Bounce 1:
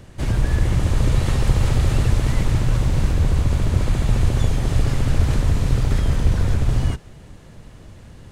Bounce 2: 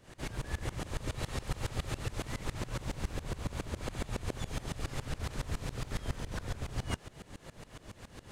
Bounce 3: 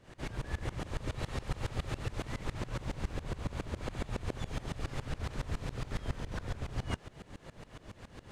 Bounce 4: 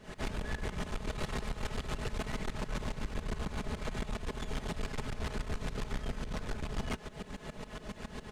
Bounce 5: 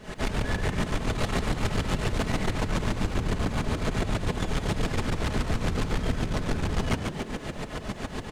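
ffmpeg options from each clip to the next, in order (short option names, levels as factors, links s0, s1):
-af "lowshelf=f=220:g=-11.5,areverse,acompressor=threshold=0.0224:ratio=6,areverse,aeval=exprs='val(0)*pow(10,-21*if(lt(mod(-7.2*n/s,1),2*abs(-7.2)/1000),1-mod(-7.2*n/s,1)/(2*abs(-7.2)/1000),(mod(-7.2*n/s,1)-2*abs(-7.2)/1000)/(1-2*abs(-7.2)/1000))/20)':c=same,volume=1.88"
-af "lowpass=f=4000:p=1"
-af "aecho=1:1:4.7:0.66,alimiter=level_in=1.06:limit=0.0631:level=0:latency=1:release=436,volume=0.944,aeval=exprs='(tanh(79.4*val(0)+0.35)-tanh(0.35))/79.4':c=same,volume=2.37"
-filter_complex "[0:a]asplit=8[s0][s1][s2][s3][s4][s5][s6][s7];[s1]adelay=142,afreqshift=74,volume=0.501[s8];[s2]adelay=284,afreqshift=148,volume=0.282[s9];[s3]adelay=426,afreqshift=222,volume=0.157[s10];[s4]adelay=568,afreqshift=296,volume=0.0881[s11];[s5]adelay=710,afreqshift=370,volume=0.0495[s12];[s6]adelay=852,afreqshift=444,volume=0.0275[s13];[s7]adelay=994,afreqshift=518,volume=0.0155[s14];[s0][s8][s9][s10][s11][s12][s13][s14]amix=inputs=8:normalize=0,volume=2.51"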